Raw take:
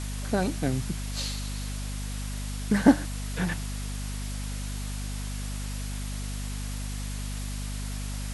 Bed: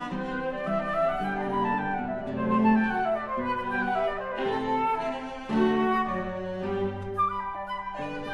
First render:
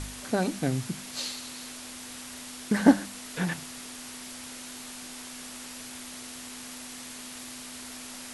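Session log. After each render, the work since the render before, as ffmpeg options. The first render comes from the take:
-af "bandreject=f=50:t=h:w=4,bandreject=f=100:t=h:w=4,bandreject=f=150:t=h:w=4,bandreject=f=200:t=h:w=4"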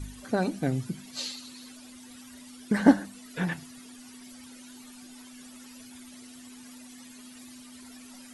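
-af "afftdn=nr=15:nf=-42"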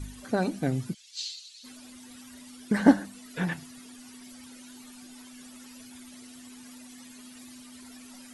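-filter_complex "[0:a]asplit=3[a][b][c];[a]afade=t=out:st=0.93:d=0.02[d];[b]asuperpass=centerf=4800:order=4:qfactor=1,afade=t=in:st=0.93:d=0.02,afade=t=out:st=1.63:d=0.02[e];[c]afade=t=in:st=1.63:d=0.02[f];[d][e][f]amix=inputs=3:normalize=0"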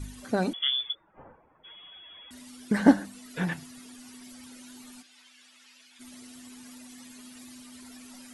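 -filter_complex "[0:a]asettb=1/sr,asplit=3[a][b][c];[a]atrim=end=0.534[d];[b]atrim=start=0.53:end=2.31,asetpts=PTS-STARTPTS,afade=t=in:d=0.004:c=qsin,afade=t=out:st=1.776:d=0.004:c=qsin,lowpass=f=3.1k:t=q:w=0.5098,lowpass=f=3.1k:t=q:w=0.6013,lowpass=f=3.1k:t=q:w=0.9,lowpass=f=3.1k:t=q:w=2.563,afreqshift=-3600[e];[c]atrim=start=2.306[f];[d][e]acrossfade=d=0.004:c1=hsin:c2=qsin[g];[g][f]acrossfade=d=0.004:c1=qsin:c2=hsin,asplit=3[h][i][j];[h]afade=t=out:st=5.01:d=0.02[k];[i]bandpass=f=2.8k:t=q:w=1,afade=t=in:st=5.01:d=0.02,afade=t=out:st=5.99:d=0.02[l];[j]afade=t=in:st=5.99:d=0.02[m];[k][l][m]amix=inputs=3:normalize=0"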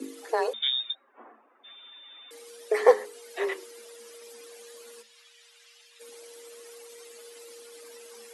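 -af "afreqshift=220"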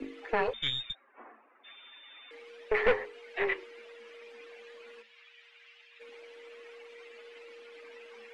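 -af "aeval=exprs='(tanh(11.2*val(0)+0.55)-tanh(0.55))/11.2':c=same,lowpass=f=2.4k:t=q:w=2.4"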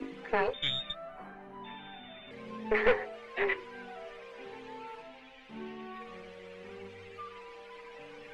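-filter_complex "[1:a]volume=-20dB[a];[0:a][a]amix=inputs=2:normalize=0"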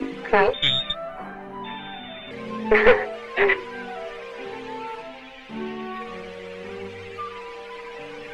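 -af "volume=11.5dB,alimiter=limit=-3dB:level=0:latency=1"

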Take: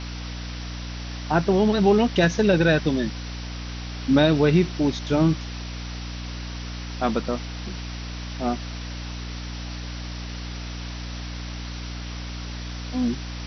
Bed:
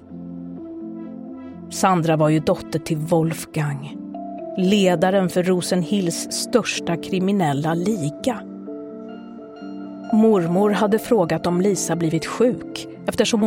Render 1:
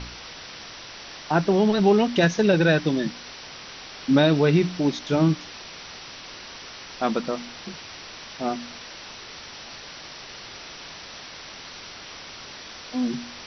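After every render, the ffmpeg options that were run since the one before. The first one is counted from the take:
-af "bandreject=f=60:t=h:w=4,bandreject=f=120:t=h:w=4,bandreject=f=180:t=h:w=4,bandreject=f=240:t=h:w=4,bandreject=f=300:t=h:w=4"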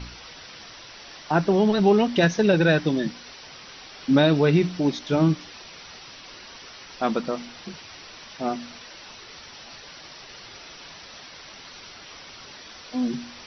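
-af "afftdn=nr=6:nf=-41"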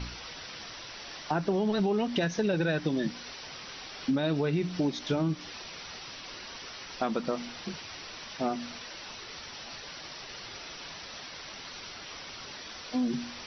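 -af "alimiter=limit=-14.5dB:level=0:latency=1:release=193,acompressor=threshold=-26dB:ratio=3"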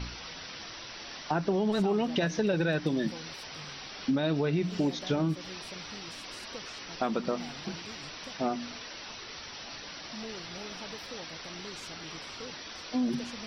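-filter_complex "[1:a]volume=-28dB[a];[0:a][a]amix=inputs=2:normalize=0"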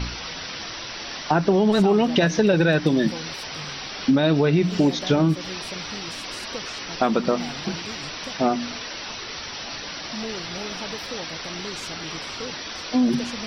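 -af "volume=9.5dB"

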